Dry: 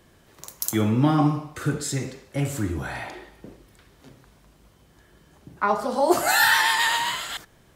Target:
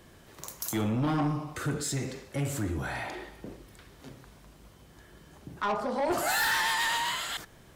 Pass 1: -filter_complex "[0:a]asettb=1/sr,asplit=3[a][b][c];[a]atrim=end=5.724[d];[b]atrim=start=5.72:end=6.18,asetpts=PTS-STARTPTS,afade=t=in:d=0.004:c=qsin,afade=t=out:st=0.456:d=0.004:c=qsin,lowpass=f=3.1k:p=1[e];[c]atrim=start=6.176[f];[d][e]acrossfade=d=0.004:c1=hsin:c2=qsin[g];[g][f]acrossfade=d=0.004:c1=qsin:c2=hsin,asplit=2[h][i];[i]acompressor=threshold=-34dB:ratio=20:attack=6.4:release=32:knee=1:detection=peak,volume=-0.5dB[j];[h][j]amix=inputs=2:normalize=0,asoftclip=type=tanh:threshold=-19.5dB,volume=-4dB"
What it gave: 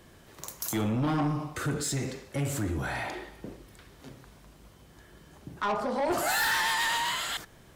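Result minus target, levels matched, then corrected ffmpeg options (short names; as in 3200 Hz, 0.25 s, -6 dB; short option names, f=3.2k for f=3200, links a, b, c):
compressor: peak gain reduction -6.5 dB
-filter_complex "[0:a]asettb=1/sr,asplit=3[a][b][c];[a]atrim=end=5.724[d];[b]atrim=start=5.72:end=6.18,asetpts=PTS-STARTPTS,afade=t=in:d=0.004:c=qsin,afade=t=out:st=0.456:d=0.004:c=qsin,lowpass=f=3.1k:p=1[e];[c]atrim=start=6.176[f];[d][e]acrossfade=d=0.004:c1=hsin:c2=qsin[g];[g][f]acrossfade=d=0.004:c1=qsin:c2=hsin,asplit=2[h][i];[i]acompressor=threshold=-41dB:ratio=20:attack=6.4:release=32:knee=1:detection=peak,volume=-0.5dB[j];[h][j]amix=inputs=2:normalize=0,asoftclip=type=tanh:threshold=-19.5dB,volume=-4dB"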